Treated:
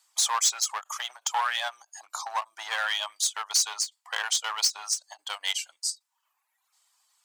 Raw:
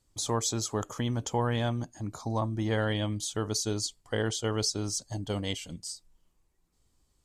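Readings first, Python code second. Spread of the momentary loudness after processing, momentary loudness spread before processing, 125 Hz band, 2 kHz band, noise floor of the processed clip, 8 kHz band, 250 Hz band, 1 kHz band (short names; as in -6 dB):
11 LU, 8 LU, under -40 dB, +8.0 dB, -79 dBFS, +8.0 dB, under -40 dB, +6.0 dB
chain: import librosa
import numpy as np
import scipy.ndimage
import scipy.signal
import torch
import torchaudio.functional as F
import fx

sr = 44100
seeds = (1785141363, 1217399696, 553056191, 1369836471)

p1 = fx.dereverb_blind(x, sr, rt60_s=0.84)
p2 = 10.0 ** (-29.5 / 20.0) * (np.abs((p1 / 10.0 ** (-29.5 / 20.0) + 3.0) % 4.0 - 2.0) - 1.0)
p3 = p1 + (p2 * librosa.db_to_amplitude(-4.5))
p4 = scipy.signal.sosfilt(scipy.signal.butter(6, 810.0, 'highpass', fs=sr, output='sos'), p3)
p5 = fx.end_taper(p4, sr, db_per_s=410.0)
y = p5 * librosa.db_to_amplitude(7.0)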